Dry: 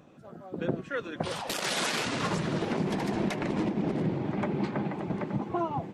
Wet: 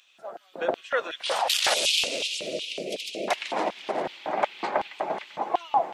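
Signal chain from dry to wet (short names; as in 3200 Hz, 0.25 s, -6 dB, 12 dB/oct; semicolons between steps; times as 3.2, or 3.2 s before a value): 1.74–3.28 elliptic band-stop 560–2500 Hz, stop band 40 dB; thinning echo 0.161 s, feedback 64%, level -19 dB; LFO high-pass square 2.7 Hz 680–3100 Hz; gain +6.5 dB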